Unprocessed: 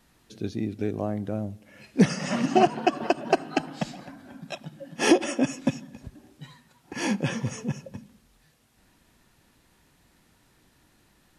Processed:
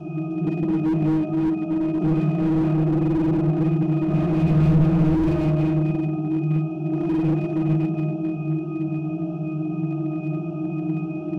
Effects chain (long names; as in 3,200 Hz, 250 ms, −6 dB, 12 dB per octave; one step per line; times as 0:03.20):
compressor on every frequency bin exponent 0.2
phaser with its sweep stopped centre 370 Hz, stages 8
0:04.08–0:05.26: power curve on the samples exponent 0.5
notch filter 1,400 Hz, Q 12
resonances in every octave D#, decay 0.61 s
spring reverb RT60 2.1 s, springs 47/53 ms, chirp 30 ms, DRR −1.5 dB
slew-rate limiting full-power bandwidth 13 Hz
level +9 dB